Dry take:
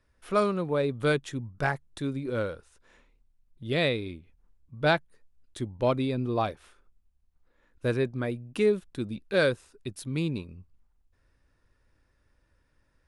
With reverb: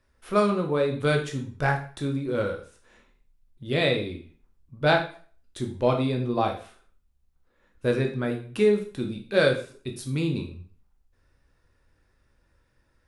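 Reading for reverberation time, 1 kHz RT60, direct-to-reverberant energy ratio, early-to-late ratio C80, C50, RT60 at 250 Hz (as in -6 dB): 0.45 s, 0.45 s, 2.5 dB, 13.5 dB, 9.0 dB, 0.45 s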